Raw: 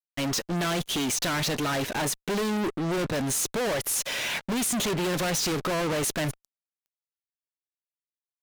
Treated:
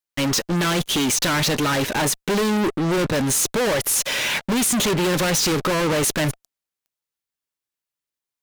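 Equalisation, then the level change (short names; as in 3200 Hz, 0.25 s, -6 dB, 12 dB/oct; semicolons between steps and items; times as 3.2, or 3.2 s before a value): notch 690 Hz, Q 12; +7.0 dB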